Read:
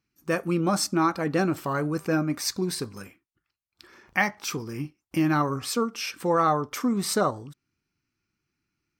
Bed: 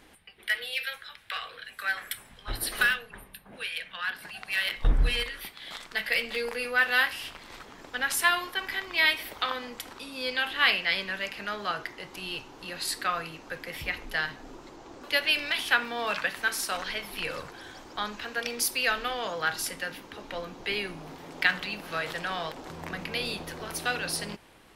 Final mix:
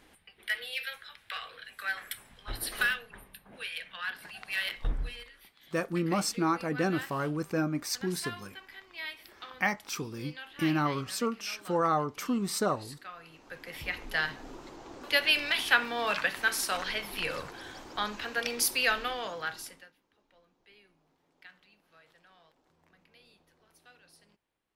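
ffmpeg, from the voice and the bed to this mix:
-filter_complex "[0:a]adelay=5450,volume=0.562[s0];[1:a]volume=4.22,afade=t=out:st=4.64:d=0.52:silence=0.237137,afade=t=in:st=13.18:d=1.07:silence=0.149624,afade=t=out:st=18.83:d=1.09:silence=0.0354813[s1];[s0][s1]amix=inputs=2:normalize=0"

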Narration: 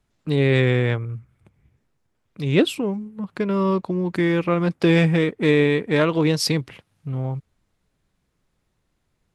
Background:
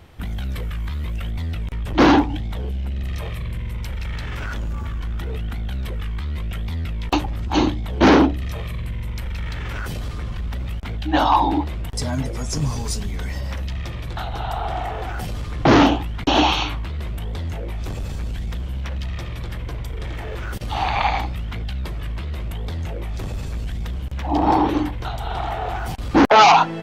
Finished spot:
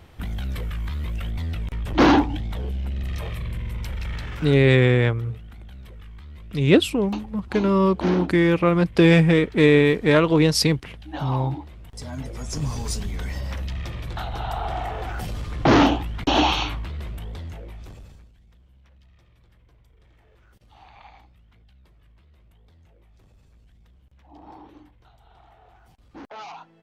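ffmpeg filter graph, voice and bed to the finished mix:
-filter_complex "[0:a]adelay=4150,volume=1.26[s0];[1:a]volume=3.35,afade=t=out:st=4.11:d=0.67:silence=0.223872,afade=t=in:st=11.85:d=1.04:silence=0.237137,afade=t=out:st=16.65:d=1.66:silence=0.0530884[s1];[s0][s1]amix=inputs=2:normalize=0"

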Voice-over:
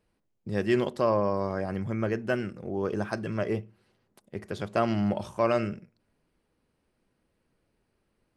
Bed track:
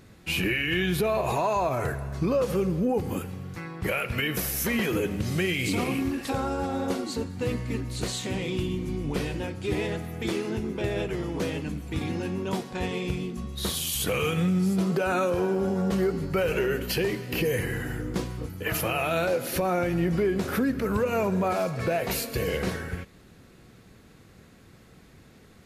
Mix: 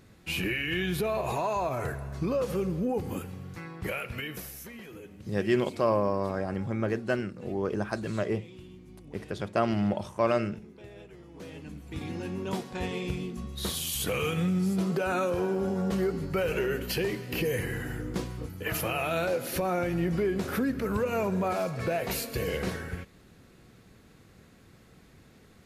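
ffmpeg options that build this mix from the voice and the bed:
-filter_complex "[0:a]adelay=4800,volume=0.944[s0];[1:a]volume=3.98,afade=t=out:st=3.72:d=1:silence=0.177828,afade=t=in:st=11.29:d=1.22:silence=0.158489[s1];[s0][s1]amix=inputs=2:normalize=0"

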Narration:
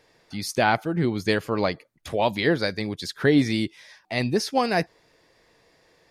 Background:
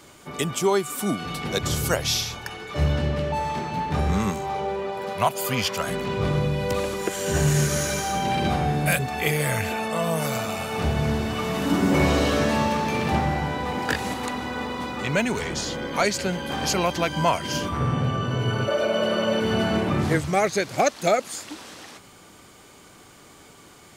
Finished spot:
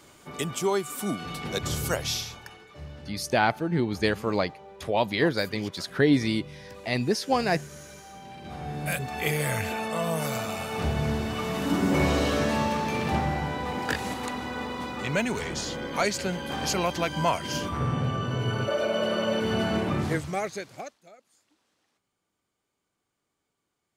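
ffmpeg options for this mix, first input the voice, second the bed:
-filter_complex "[0:a]adelay=2750,volume=0.794[s0];[1:a]volume=3.98,afade=t=out:st=2.01:d=0.79:silence=0.16788,afade=t=in:st=8.43:d=0.87:silence=0.149624,afade=t=out:st=19.89:d=1.1:silence=0.0375837[s1];[s0][s1]amix=inputs=2:normalize=0"

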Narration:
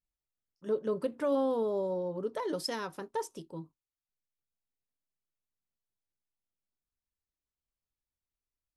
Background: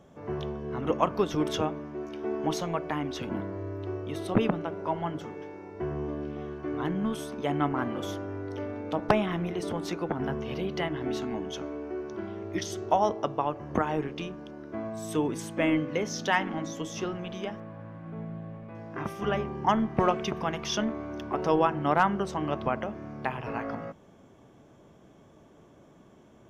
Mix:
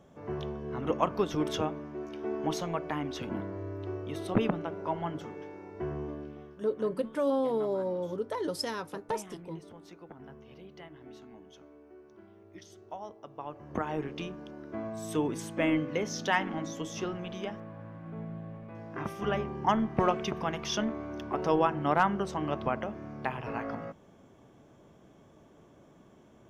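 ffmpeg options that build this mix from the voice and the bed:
-filter_complex "[0:a]adelay=5950,volume=1.12[s0];[1:a]volume=4.73,afade=t=out:st=5.89:d=0.74:silence=0.16788,afade=t=in:st=13.26:d=0.95:silence=0.158489[s1];[s0][s1]amix=inputs=2:normalize=0"

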